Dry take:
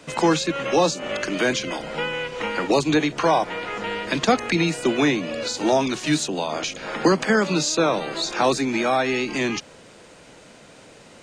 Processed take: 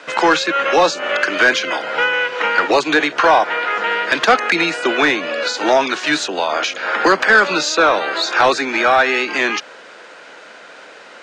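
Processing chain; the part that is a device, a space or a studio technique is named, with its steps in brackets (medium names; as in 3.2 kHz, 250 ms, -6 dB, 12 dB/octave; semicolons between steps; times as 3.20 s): intercom (band-pass 470–4700 Hz; peaking EQ 1.5 kHz +8 dB 0.55 oct; saturation -12 dBFS, distortion -18 dB); trim +8.5 dB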